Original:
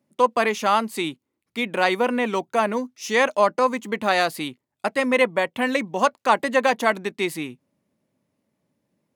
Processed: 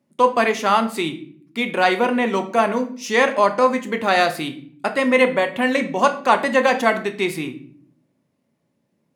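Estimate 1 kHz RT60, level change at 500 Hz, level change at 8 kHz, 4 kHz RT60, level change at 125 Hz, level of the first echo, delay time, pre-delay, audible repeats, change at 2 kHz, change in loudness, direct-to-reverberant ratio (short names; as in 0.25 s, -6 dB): 0.45 s, +3.0 dB, +1.0 dB, 0.40 s, +4.0 dB, none, none, 3 ms, none, +3.0 dB, +3.0 dB, 6.0 dB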